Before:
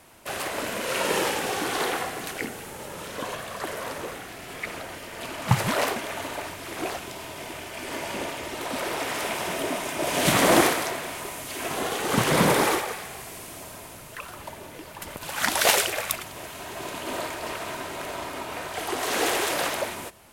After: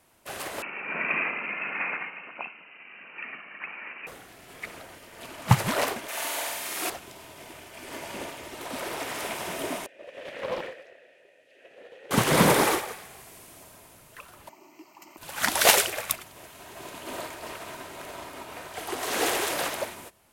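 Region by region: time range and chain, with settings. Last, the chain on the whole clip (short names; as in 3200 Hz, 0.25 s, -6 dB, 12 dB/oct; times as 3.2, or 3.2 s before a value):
0.62–4.07 inverted band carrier 2900 Hz + brick-wall FIR high-pass 150 Hz
6.08–6.9 HPF 240 Hz 6 dB/oct + tilt +2.5 dB/oct + flutter echo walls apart 8.2 m, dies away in 1.4 s
9.86–12.11 vowel filter e + Doppler distortion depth 0.44 ms
14.49–15.18 resonant high-pass 340 Hz, resonance Q 4.1 + fixed phaser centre 2400 Hz, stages 8
whole clip: high shelf 10000 Hz +3.5 dB; upward expander 1.5:1, over -41 dBFS; gain +2.5 dB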